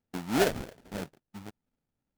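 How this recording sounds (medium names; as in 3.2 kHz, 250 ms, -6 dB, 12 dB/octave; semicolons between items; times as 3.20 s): phasing stages 4, 3 Hz, lowest notch 570–1300 Hz; aliases and images of a low sample rate 1.1 kHz, jitter 20%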